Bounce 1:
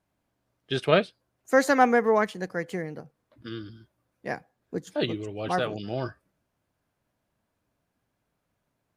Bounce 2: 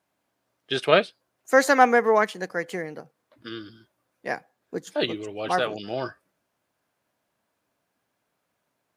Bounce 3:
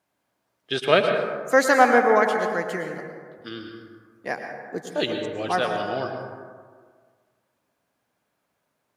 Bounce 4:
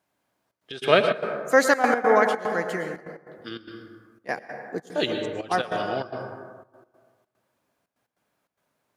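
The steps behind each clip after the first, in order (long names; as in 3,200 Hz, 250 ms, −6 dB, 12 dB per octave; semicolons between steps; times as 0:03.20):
high-pass filter 420 Hz 6 dB per octave; level +4.5 dB
dense smooth reverb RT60 1.7 s, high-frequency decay 0.35×, pre-delay 95 ms, DRR 4 dB
gate pattern "xxxxx.x.xxx." 147 BPM −12 dB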